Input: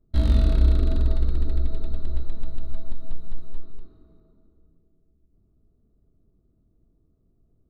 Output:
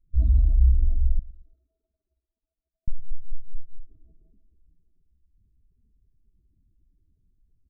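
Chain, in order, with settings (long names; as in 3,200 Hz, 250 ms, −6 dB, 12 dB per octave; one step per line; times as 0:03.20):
expanding power law on the bin magnitudes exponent 2
0:01.19–0:02.88: high-pass filter 660 Hz 12 dB per octave
repeating echo 114 ms, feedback 39%, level −19.5 dB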